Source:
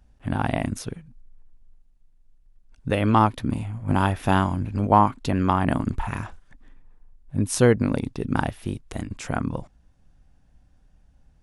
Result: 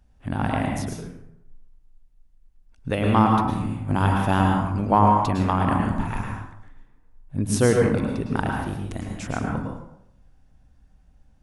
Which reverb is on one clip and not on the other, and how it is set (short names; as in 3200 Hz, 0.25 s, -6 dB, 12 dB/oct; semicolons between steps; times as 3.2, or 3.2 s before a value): plate-style reverb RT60 0.78 s, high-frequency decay 0.6×, pre-delay 95 ms, DRR 0.5 dB; gain -2 dB